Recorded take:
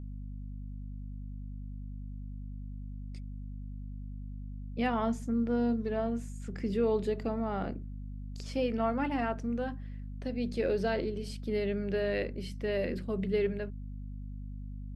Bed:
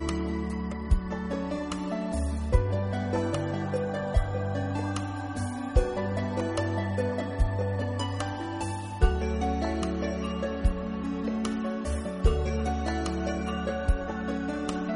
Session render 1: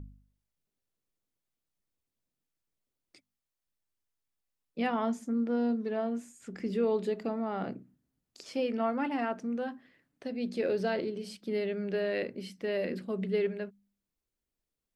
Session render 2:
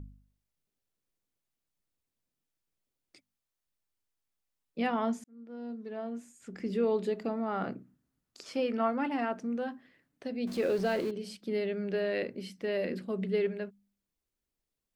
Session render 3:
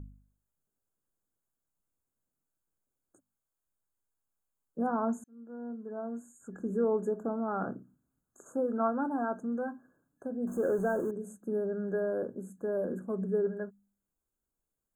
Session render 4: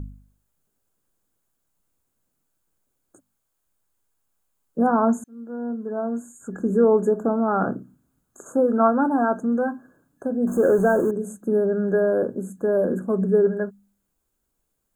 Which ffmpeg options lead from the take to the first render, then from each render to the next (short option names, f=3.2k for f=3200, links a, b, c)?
-af "bandreject=f=50:t=h:w=4,bandreject=f=100:t=h:w=4,bandreject=f=150:t=h:w=4,bandreject=f=200:t=h:w=4,bandreject=f=250:t=h:w=4"
-filter_complex "[0:a]asettb=1/sr,asplit=3[a][b][c];[a]atrim=end=7.484[d];[b]atrim=start=7.48:end=8.88,asetpts=PTS-STARTPTS,afade=t=in:d=0.004:c=qsin,afade=t=out:st=1.396:d=0.004:c=qsin,equalizer=f=1.3k:t=o:w=0.77:g=5.5[e];[c]atrim=start=8.876[f];[d][e]acrossfade=d=0.004:c1=hsin:c2=qsin[g];[g][f]acrossfade=d=0.004:c1=qsin:c2=hsin,asettb=1/sr,asplit=3[h][i][j];[h]atrim=end=10.474[k];[i]atrim=start=10.47:end=11.11,asetpts=PTS-STARTPTS,afade=t=in:d=0.004:c=qsin,afade=t=out:st=0.636:d=0.004:c=qsin,aeval=exprs='val(0)+0.5*0.00891*sgn(val(0))':c=same[l];[j]atrim=start=11.106[m];[k][l]acrossfade=d=0.004:c1=hsin:c2=qsin[n];[n][m]acrossfade=d=0.004:c1=qsin:c2=hsin,asplit=2[o][p];[o]atrim=end=5.24,asetpts=PTS-STARTPTS,afade=t=out:st=5.236:d=0.004:c=hsin[q];[p]atrim=start=5.24,asetpts=PTS-STARTPTS,afade=t=in:d=1.56[r];[q][r]concat=n=2:v=0:a=1"
-af "afftfilt=real='re*(1-between(b*sr/4096,1700,6300))':imag='im*(1-between(b*sr/4096,1700,6300))':win_size=4096:overlap=0.75"
-af "volume=11.5dB"